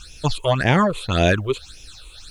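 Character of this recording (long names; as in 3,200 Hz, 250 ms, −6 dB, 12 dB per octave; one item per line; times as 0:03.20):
phaser sweep stages 8, 1.8 Hz, lowest notch 200–1,300 Hz
a quantiser's noise floor 12 bits, dither none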